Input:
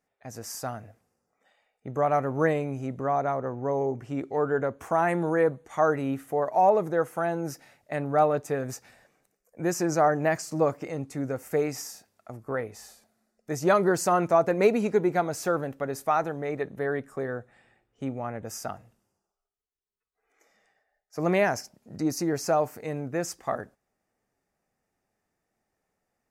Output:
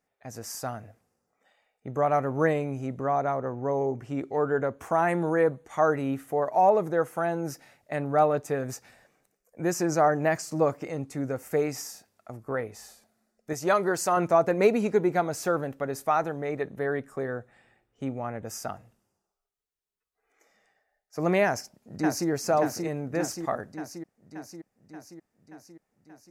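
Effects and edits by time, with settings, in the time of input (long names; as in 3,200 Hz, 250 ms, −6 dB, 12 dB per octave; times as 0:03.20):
0:13.53–0:14.17: low-shelf EQ 350 Hz −8 dB
0:21.45–0:22.29: delay throw 580 ms, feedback 65%, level −4 dB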